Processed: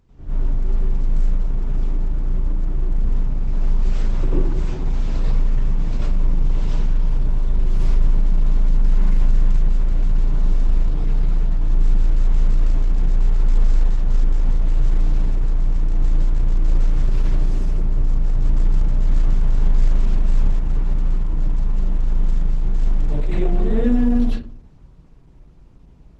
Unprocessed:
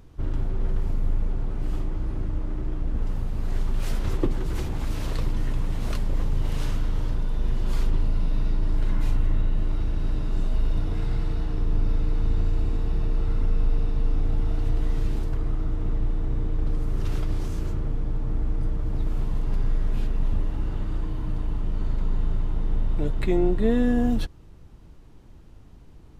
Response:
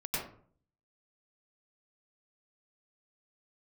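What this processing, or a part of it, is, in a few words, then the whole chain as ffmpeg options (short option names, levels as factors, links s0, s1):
speakerphone in a meeting room: -filter_complex "[1:a]atrim=start_sample=2205[s0];[0:a][s0]afir=irnorm=-1:irlink=0,dynaudnorm=f=140:g=31:m=1.88,volume=0.596" -ar 48000 -c:a libopus -b:a 12k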